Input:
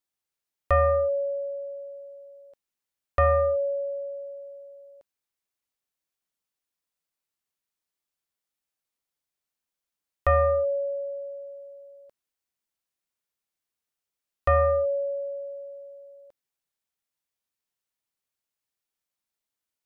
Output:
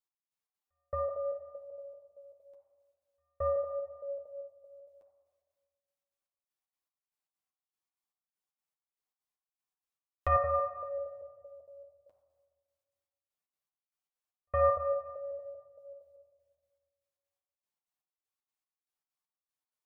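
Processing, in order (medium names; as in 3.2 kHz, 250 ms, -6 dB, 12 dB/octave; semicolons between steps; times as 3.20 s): trance gate "x...xx.x" 194 bpm -60 dB; flange 0.76 Hz, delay 8.2 ms, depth 3.6 ms, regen +29%; on a send: cabinet simulation 230–2100 Hz, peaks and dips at 230 Hz -9 dB, 340 Hz -8 dB, 510 Hz -8 dB, 760 Hz +9 dB, 1.1 kHz +10 dB, 1.7 kHz -5 dB + reverberation RT60 1.6 s, pre-delay 7 ms, DRR -0.5 dB; on the sum: trim -4 dB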